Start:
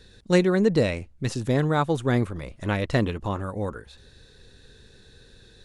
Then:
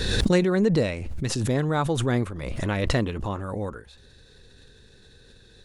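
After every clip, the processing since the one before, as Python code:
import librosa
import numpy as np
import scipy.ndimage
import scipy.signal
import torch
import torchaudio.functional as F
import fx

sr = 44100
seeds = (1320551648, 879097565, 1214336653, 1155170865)

y = fx.pre_swell(x, sr, db_per_s=29.0)
y = y * librosa.db_to_amplitude(-2.0)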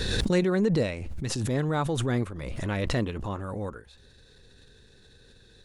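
y = fx.transient(x, sr, attack_db=-7, sustain_db=-2)
y = y * librosa.db_to_amplitude(-2.0)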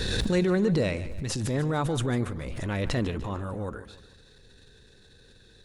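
y = fx.transient(x, sr, attack_db=-4, sustain_db=4)
y = fx.echo_feedback(y, sr, ms=148, feedback_pct=43, wet_db=-14.5)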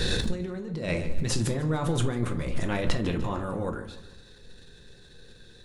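y = fx.over_compress(x, sr, threshold_db=-28.0, ratio=-0.5)
y = fx.room_shoebox(y, sr, seeds[0], volume_m3=220.0, walls='furnished', distance_m=0.87)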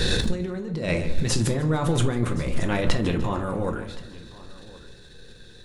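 y = x + 10.0 ** (-20.5 / 20.0) * np.pad(x, (int(1071 * sr / 1000.0), 0))[:len(x)]
y = y * librosa.db_to_amplitude(4.0)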